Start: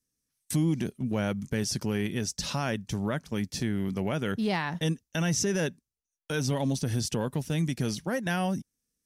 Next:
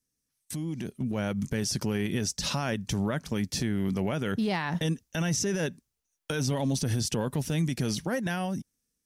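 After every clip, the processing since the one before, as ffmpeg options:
-af "alimiter=level_in=4dB:limit=-24dB:level=0:latency=1:release=120,volume=-4dB,dynaudnorm=f=310:g=7:m=8dB"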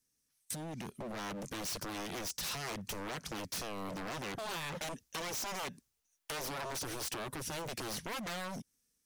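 -af "aeval=exprs='0.0282*(abs(mod(val(0)/0.0282+3,4)-2)-1)':c=same,acompressor=threshold=-40dB:ratio=2.5,lowshelf=f=490:g=-6,volume=2.5dB"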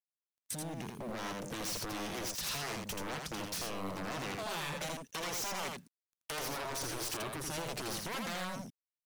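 -filter_complex "[0:a]acrusher=bits=10:mix=0:aa=0.000001,asplit=2[a][b];[b]aecho=0:1:82:0.631[c];[a][c]amix=inputs=2:normalize=0"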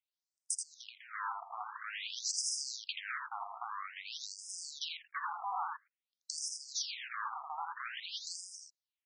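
-af "afftfilt=real='re*between(b*sr/1024,930*pow(7000/930,0.5+0.5*sin(2*PI*0.5*pts/sr))/1.41,930*pow(7000/930,0.5+0.5*sin(2*PI*0.5*pts/sr))*1.41)':imag='im*between(b*sr/1024,930*pow(7000/930,0.5+0.5*sin(2*PI*0.5*pts/sr))/1.41,930*pow(7000/930,0.5+0.5*sin(2*PI*0.5*pts/sr))*1.41)':win_size=1024:overlap=0.75,volume=6.5dB"

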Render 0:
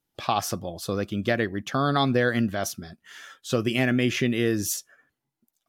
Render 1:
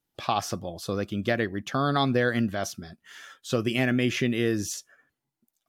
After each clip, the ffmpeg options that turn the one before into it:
-filter_complex "[0:a]acrossover=split=7400[a][b];[b]acompressor=threshold=-42dB:ratio=4:attack=1:release=60[c];[a][c]amix=inputs=2:normalize=0,volume=-1.5dB"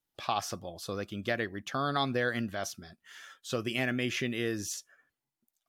-af "equalizer=f=170:w=0.37:g=-5.5,volume=-3.5dB"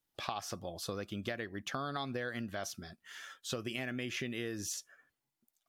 -af "acompressor=threshold=-36dB:ratio=6,volume=1dB"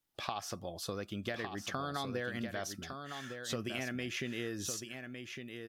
-af "aecho=1:1:1157:0.447"

